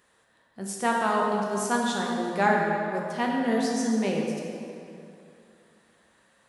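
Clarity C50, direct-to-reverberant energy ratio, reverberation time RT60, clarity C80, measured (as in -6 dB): 0.5 dB, -2.0 dB, 2.7 s, 1.5 dB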